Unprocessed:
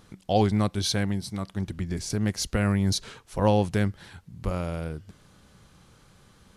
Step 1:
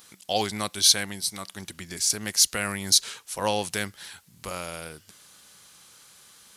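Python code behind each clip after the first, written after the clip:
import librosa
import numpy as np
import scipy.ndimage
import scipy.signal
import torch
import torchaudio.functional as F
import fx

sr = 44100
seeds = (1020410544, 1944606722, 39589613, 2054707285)

y = fx.tilt_eq(x, sr, slope=4.5)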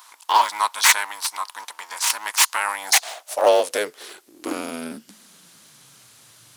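y = fx.cycle_switch(x, sr, every=2, mode='inverted')
y = fx.filter_sweep_highpass(y, sr, from_hz=960.0, to_hz=120.0, start_s=2.58, end_s=6.05, q=6.9)
y = y * librosa.db_to_amplitude(2.0)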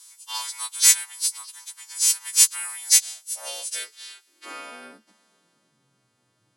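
y = fx.freq_snap(x, sr, grid_st=2)
y = fx.filter_sweep_bandpass(y, sr, from_hz=7700.0, to_hz=240.0, start_s=3.59, end_s=5.79, q=0.81)
y = y * librosa.db_to_amplitude(-5.5)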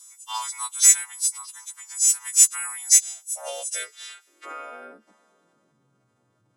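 y = fx.envelope_sharpen(x, sr, power=1.5)
y = y * librosa.db_to_amplitude(1.0)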